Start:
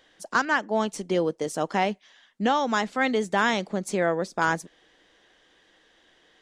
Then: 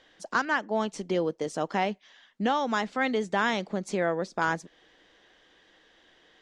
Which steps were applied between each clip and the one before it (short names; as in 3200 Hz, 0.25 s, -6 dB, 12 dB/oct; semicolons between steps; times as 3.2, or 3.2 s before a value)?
LPF 6400 Hz 12 dB/oct; in parallel at -2.5 dB: compressor, threshold -33 dBFS, peak gain reduction 14.5 dB; on the sum: gain -4.5 dB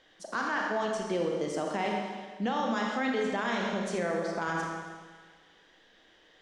Schroeder reverb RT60 1.5 s, combs from 27 ms, DRR 0.5 dB; limiter -18 dBFS, peak gain reduction 8 dB; gain -3 dB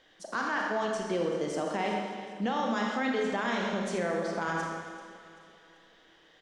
feedback echo 0.387 s, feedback 46%, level -16.5 dB